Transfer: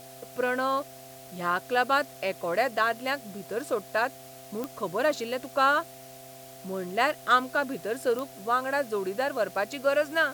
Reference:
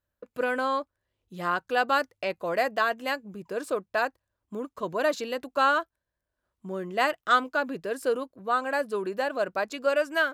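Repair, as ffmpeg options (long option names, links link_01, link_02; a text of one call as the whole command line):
ffmpeg -i in.wav -af "adeclick=threshold=4,bandreject=frequency=130:width_type=h:width=4,bandreject=frequency=260:width_type=h:width=4,bandreject=frequency=390:width_type=h:width=4,bandreject=frequency=520:width_type=h:width=4,bandreject=frequency=650:width_type=h:width=4,bandreject=frequency=780:width_type=h:width=4,bandreject=frequency=680:width=30,afwtdn=0.0032" out.wav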